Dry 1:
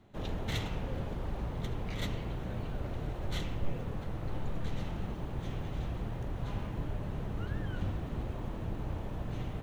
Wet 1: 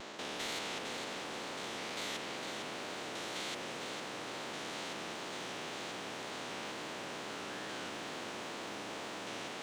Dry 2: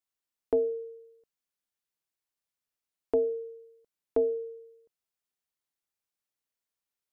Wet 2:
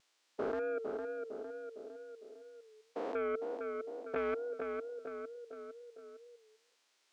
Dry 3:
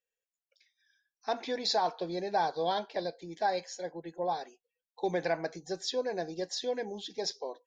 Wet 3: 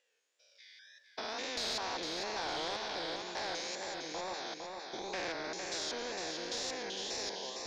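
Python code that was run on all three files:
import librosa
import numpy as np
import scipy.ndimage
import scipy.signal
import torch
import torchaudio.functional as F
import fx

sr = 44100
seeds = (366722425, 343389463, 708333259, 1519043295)

y = fx.spec_steps(x, sr, hold_ms=200)
y = scipy.signal.sosfilt(scipy.signal.butter(4, 280.0, 'highpass', fs=sr, output='sos'), y)
y = fx.high_shelf(y, sr, hz=3200.0, db=11.0)
y = 10.0 ** (-26.5 / 20.0) * np.tanh(y / 10.0 ** (-26.5 / 20.0))
y = fx.wow_flutter(y, sr, seeds[0], rate_hz=2.1, depth_cents=94.0)
y = fx.air_absorb(y, sr, metres=130.0)
y = fx.echo_feedback(y, sr, ms=456, feedback_pct=37, wet_db=-9.0)
y = fx.spectral_comp(y, sr, ratio=2.0)
y = y * librosa.db_to_amplitude(2.0)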